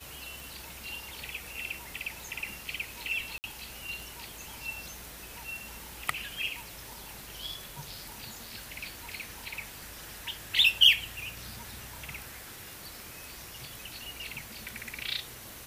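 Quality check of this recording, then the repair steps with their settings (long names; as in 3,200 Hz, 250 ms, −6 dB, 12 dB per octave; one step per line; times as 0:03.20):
scratch tick
0:03.38–0:03.44: drop-out 59 ms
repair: click removal
repair the gap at 0:03.38, 59 ms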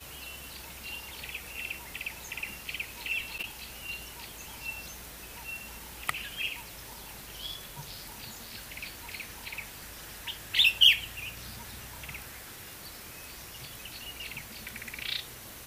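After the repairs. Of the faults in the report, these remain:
none of them is left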